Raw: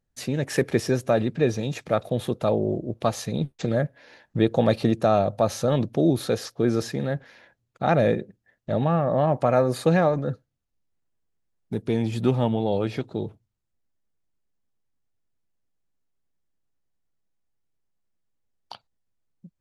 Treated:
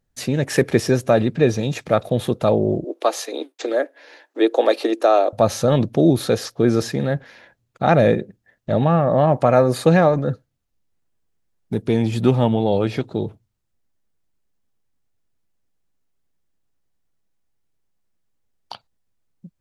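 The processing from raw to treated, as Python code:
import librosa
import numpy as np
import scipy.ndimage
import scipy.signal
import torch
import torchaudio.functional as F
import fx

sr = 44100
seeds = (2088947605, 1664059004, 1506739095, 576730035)

y = fx.steep_highpass(x, sr, hz=280.0, slope=72, at=(2.84, 5.33))
y = y * 10.0 ** (5.5 / 20.0)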